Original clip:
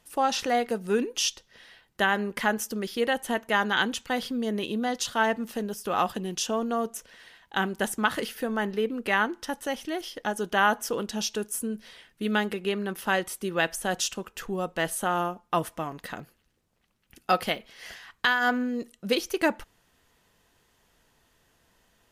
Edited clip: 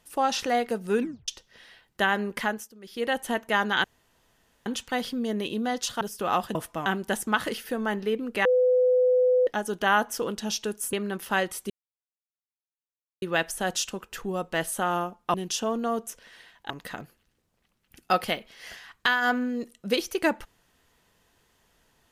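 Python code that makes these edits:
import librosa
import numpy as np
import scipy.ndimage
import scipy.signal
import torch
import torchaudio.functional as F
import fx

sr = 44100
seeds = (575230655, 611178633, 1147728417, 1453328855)

y = fx.edit(x, sr, fx.tape_stop(start_s=1.01, length_s=0.27),
    fx.fade_down_up(start_s=2.38, length_s=0.76, db=-19.0, fade_s=0.34),
    fx.insert_room_tone(at_s=3.84, length_s=0.82),
    fx.cut(start_s=5.19, length_s=0.48),
    fx.swap(start_s=6.21, length_s=1.36, other_s=15.58, other_length_s=0.31),
    fx.bleep(start_s=9.16, length_s=1.02, hz=503.0, db=-17.5),
    fx.cut(start_s=11.64, length_s=1.05),
    fx.insert_silence(at_s=13.46, length_s=1.52), tone=tone)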